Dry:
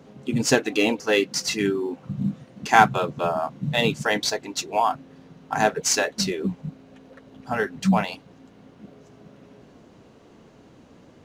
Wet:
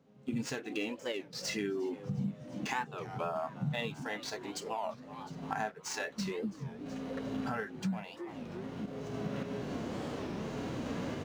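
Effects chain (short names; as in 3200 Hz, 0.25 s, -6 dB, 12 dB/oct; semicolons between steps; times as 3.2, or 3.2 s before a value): median filter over 3 samples; recorder AGC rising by 18 dB/s; harmonic-percussive split percussive -11 dB; random-step tremolo; gate -45 dBFS, range -9 dB; frequency-shifting echo 0.35 s, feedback 59%, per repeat +110 Hz, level -20 dB; dynamic EQ 1800 Hz, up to +4 dB, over -37 dBFS, Q 0.8; compressor 2.5:1, threshold -40 dBFS, peak gain reduction 17 dB; record warp 33 1/3 rpm, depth 250 cents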